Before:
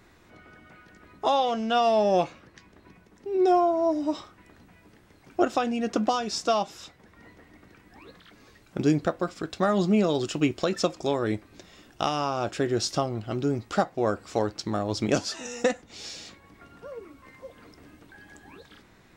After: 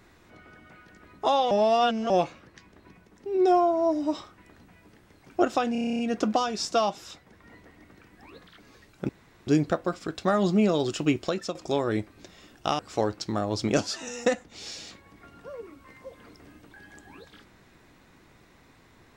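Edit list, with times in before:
0:01.51–0:02.10: reverse
0:05.72: stutter 0.03 s, 10 plays
0:08.82: splice in room tone 0.38 s
0:10.54–0:10.90: fade out, to −10.5 dB
0:12.14–0:14.17: remove

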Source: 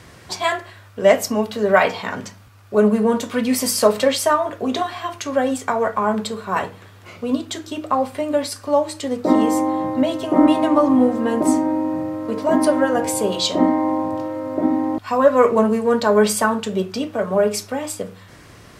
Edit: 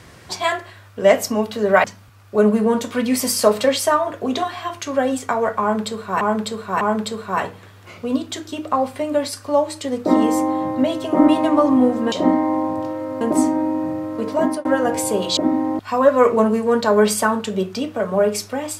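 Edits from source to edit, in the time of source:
0:01.84–0:02.23: remove
0:06.00–0:06.60: repeat, 3 plays
0:12.41–0:12.75: fade out equal-power
0:13.47–0:14.56: move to 0:11.31

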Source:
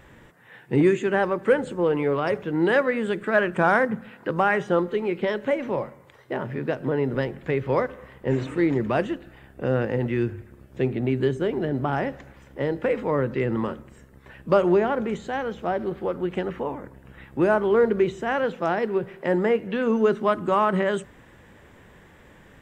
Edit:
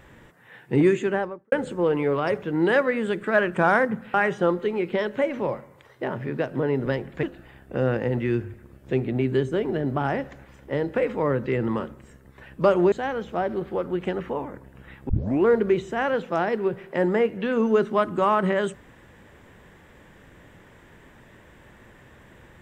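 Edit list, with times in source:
0:01.00–0:01.52: fade out and dull
0:04.14–0:04.43: remove
0:07.52–0:09.11: remove
0:14.80–0:15.22: remove
0:17.39: tape start 0.36 s

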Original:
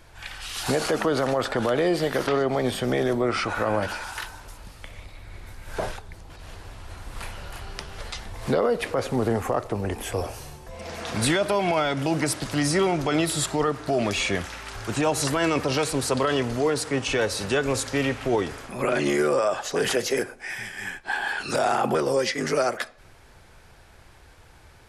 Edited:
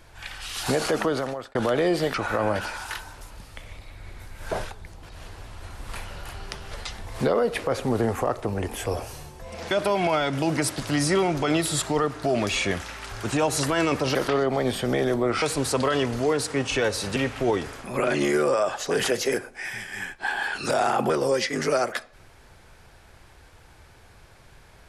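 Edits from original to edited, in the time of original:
0:01.02–0:01.55: fade out
0:02.14–0:03.41: move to 0:15.79
0:10.98–0:11.35: remove
0:17.53–0:18.01: remove

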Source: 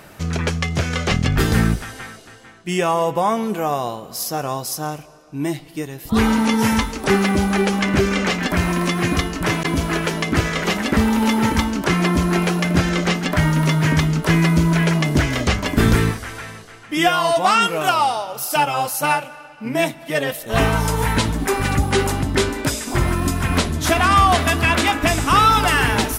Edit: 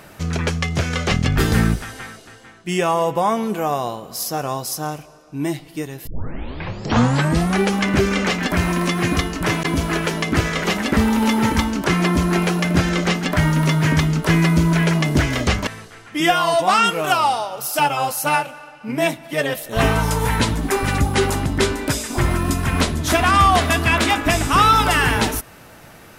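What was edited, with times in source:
0:06.07: tape start 1.54 s
0:15.67–0:16.44: remove

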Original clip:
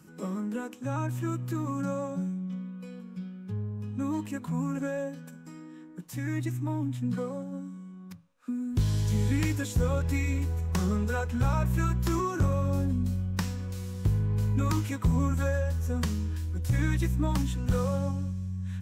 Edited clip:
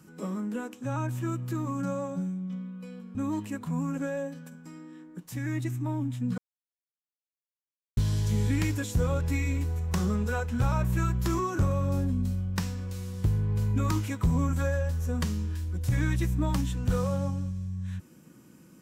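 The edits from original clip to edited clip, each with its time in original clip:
0:03.15–0:03.96: remove
0:07.19–0:08.78: silence

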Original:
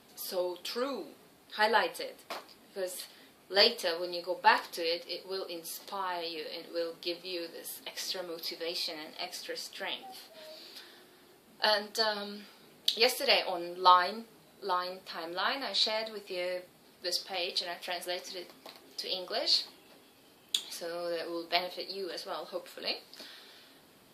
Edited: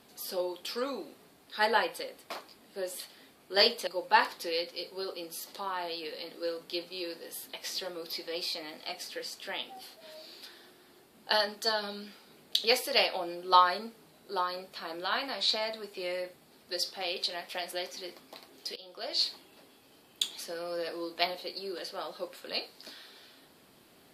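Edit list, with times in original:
0:03.87–0:04.20: remove
0:19.09–0:19.66: fade in, from −20 dB

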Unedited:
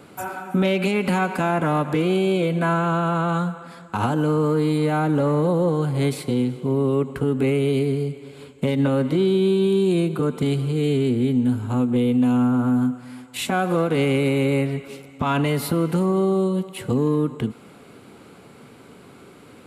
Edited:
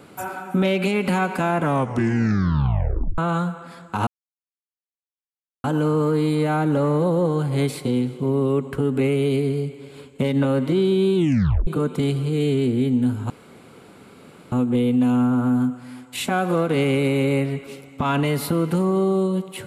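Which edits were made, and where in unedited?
0:01.63: tape stop 1.55 s
0:04.07: splice in silence 1.57 s
0:09.59: tape stop 0.51 s
0:11.73: splice in room tone 1.22 s

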